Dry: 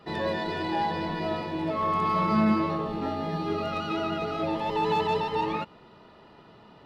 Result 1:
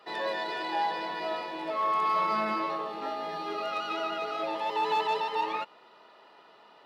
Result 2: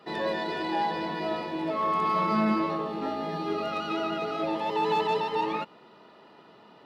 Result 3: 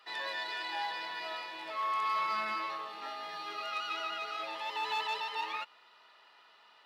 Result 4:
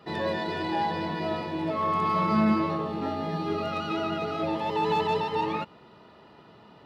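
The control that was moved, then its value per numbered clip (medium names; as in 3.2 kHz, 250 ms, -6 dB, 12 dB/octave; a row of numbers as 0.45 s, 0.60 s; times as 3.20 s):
high-pass, cutoff frequency: 560 Hz, 220 Hz, 1.4 kHz, 63 Hz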